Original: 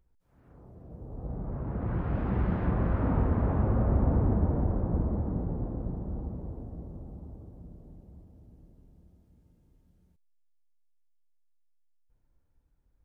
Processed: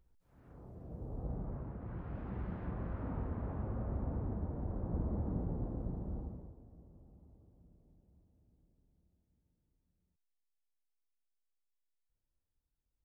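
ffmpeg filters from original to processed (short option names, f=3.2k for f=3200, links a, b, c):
-af "volume=6.5dB,afade=t=out:st=1.06:d=0.72:silence=0.251189,afade=t=in:st=4.57:d=0.74:silence=0.421697,afade=t=out:st=6.15:d=0.4:silence=0.281838"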